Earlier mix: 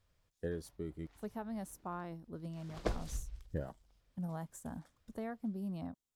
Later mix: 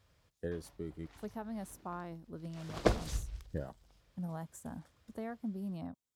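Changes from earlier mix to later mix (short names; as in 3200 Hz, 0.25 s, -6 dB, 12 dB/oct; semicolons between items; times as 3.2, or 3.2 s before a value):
background +8.0 dB; master: add HPF 56 Hz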